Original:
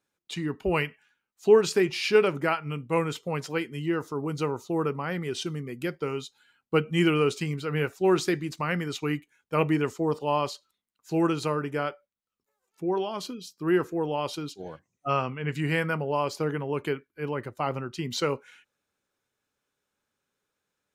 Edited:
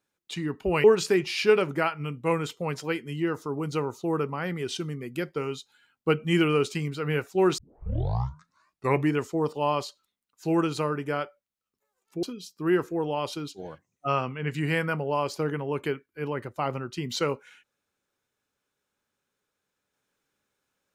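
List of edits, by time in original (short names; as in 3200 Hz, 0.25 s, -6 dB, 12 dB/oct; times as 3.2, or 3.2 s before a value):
0.84–1.5 cut
8.24 tape start 1.53 s
12.89–13.24 cut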